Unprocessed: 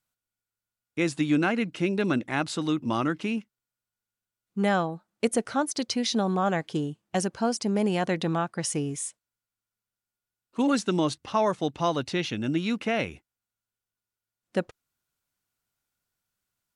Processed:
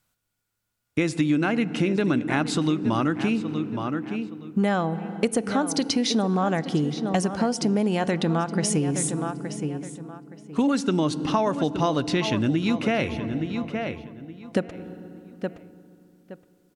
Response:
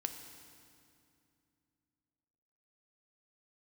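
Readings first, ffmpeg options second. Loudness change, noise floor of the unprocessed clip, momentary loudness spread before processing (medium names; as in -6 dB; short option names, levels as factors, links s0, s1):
+2.5 dB, under -85 dBFS, 7 LU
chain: -filter_complex "[0:a]asplit=2[s0][s1];[s1]adelay=869,lowpass=f=3600:p=1,volume=0.224,asplit=2[s2][s3];[s3]adelay=869,lowpass=f=3600:p=1,volume=0.23,asplit=2[s4][s5];[s5]adelay=869,lowpass=f=3600:p=1,volume=0.23[s6];[s0][s2][s4][s6]amix=inputs=4:normalize=0,asplit=2[s7][s8];[1:a]atrim=start_sample=2205,lowshelf=f=340:g=11,highshelf=f=5700:g=-10[s9];[s8][s9]afir=irnorm=-1:irlink=0,volume=0.335[s10];[s7][s10]amix=inputs=2:normalize=0,acompressor=threshold=0.0355:ratio=4,volume=2.51"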